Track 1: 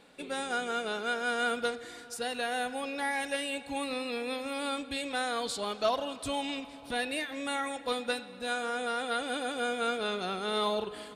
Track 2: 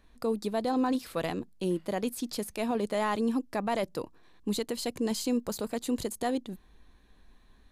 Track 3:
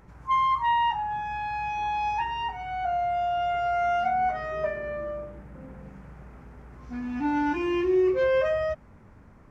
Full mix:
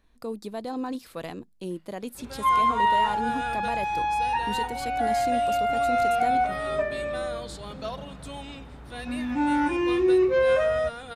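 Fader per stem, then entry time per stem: -6.5, -4.0, +2.0 dB; 2.00, 0.00, 2.15 s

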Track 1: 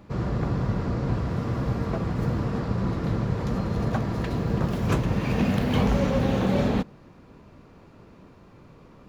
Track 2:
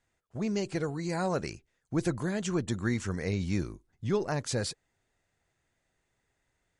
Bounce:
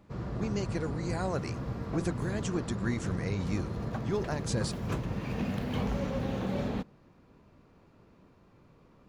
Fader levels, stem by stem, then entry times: -9.5, -3.0 dB; 0.00, 0.00 s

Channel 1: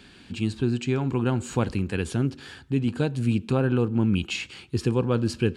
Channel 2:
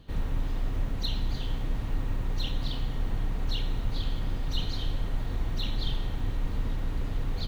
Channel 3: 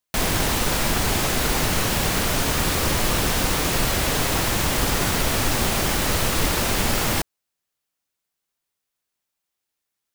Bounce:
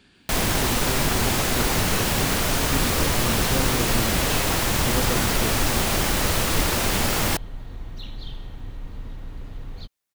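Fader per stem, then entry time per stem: -6.5, -5.5, -0.5 dB; 0.00, 2.40, 0.15 s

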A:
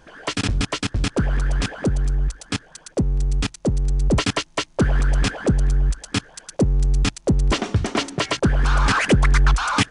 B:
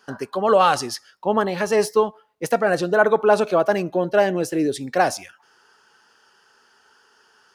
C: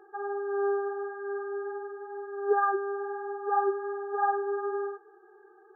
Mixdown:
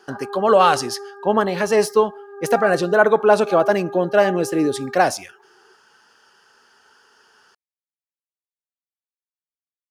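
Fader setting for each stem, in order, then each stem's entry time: off, +2.0 dB, -1.0 dB; off, 0.00 s, 0.00 s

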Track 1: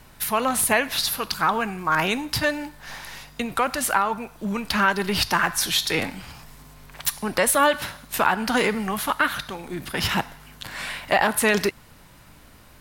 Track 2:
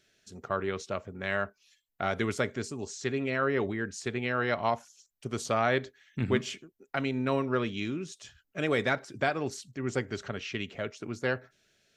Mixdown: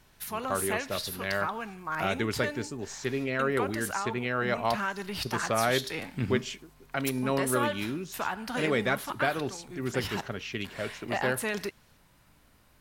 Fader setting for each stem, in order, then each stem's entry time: -12.0, 0.0 dB; 0.00, 0.00 s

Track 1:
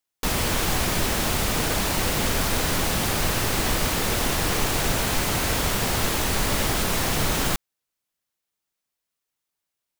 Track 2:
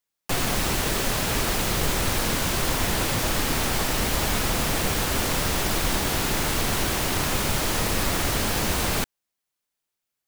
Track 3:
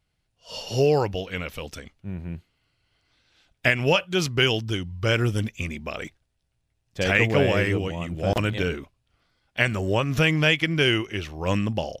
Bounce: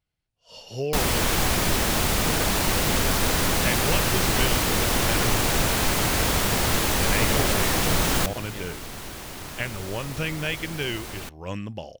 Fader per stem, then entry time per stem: +1.0, -12.5, -8.5 dB; 0.70, 2.25, 0.00 s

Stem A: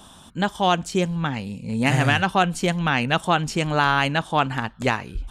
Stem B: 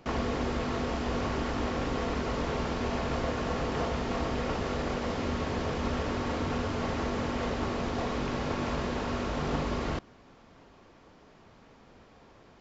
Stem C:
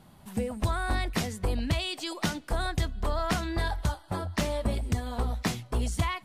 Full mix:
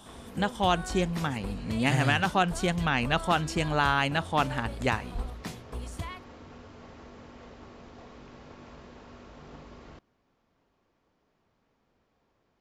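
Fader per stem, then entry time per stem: -5.5, -17.0, -9.5 dB; 0.00, 0.00, 0.00 s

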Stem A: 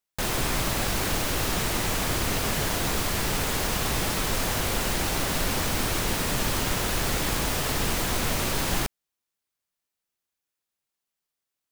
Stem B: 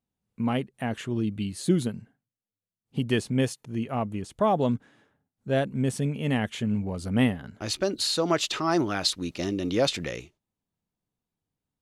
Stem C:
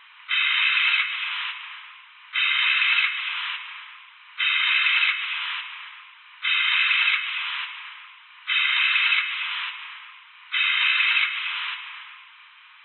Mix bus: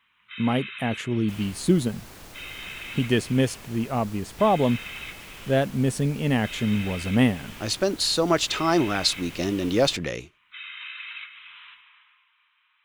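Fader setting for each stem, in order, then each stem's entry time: -18.5, +3.0, -17.5 dB; 1.10, 0.00, 0.00 s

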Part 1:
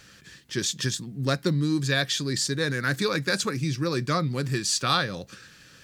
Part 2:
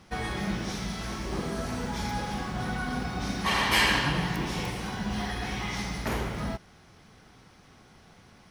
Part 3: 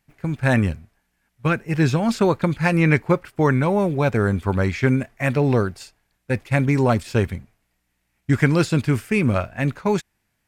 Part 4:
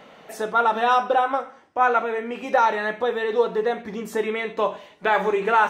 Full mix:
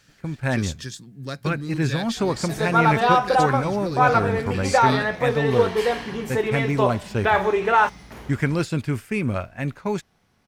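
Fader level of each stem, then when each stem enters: -7.0, -10.5, -5.0, +1.0 dB; 0.00, 2.05, 0.00, 2.20 s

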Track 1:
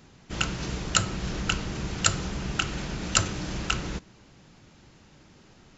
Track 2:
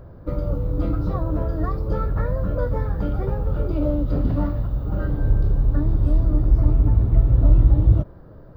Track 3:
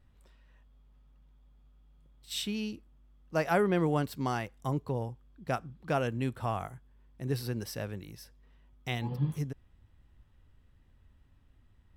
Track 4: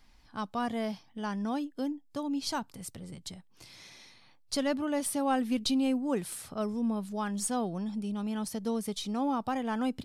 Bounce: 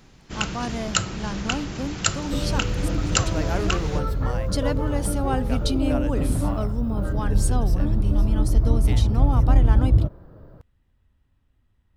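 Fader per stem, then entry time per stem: +0.5, -2.0, -3.0, +2.0 dB; 0.00, 2.05, 0.00, 0.00 s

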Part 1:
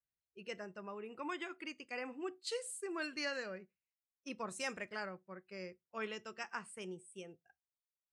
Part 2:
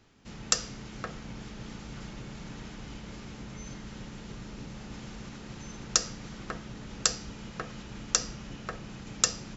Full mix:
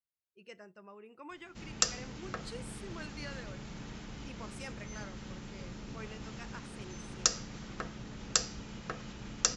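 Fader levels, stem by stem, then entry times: -6.0, -2.5 dB; 0.00, 1.30 s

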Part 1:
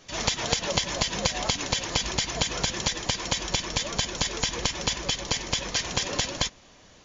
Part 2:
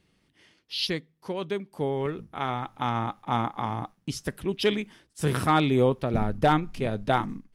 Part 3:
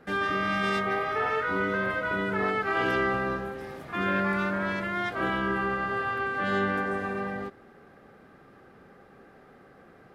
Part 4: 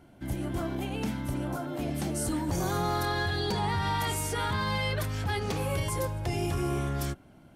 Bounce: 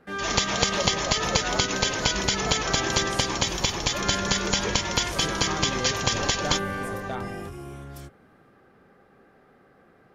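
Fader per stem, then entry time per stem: +2.0, -11.5, -3.5, -9.5 dB; 0.10, 0.00, 0.00, 0.95 s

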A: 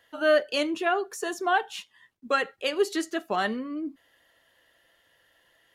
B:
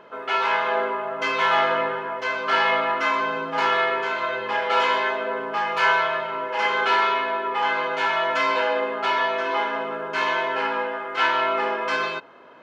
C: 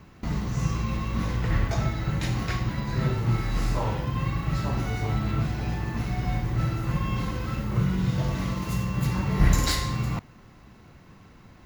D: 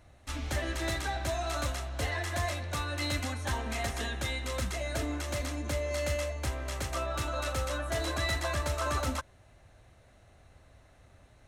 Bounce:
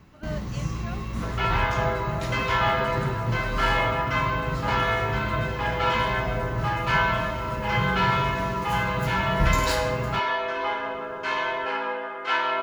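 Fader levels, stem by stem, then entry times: -16.5, -3.5, -3.0, -18.5 dB; 0.00, 1.10, 0.00, 0.70 s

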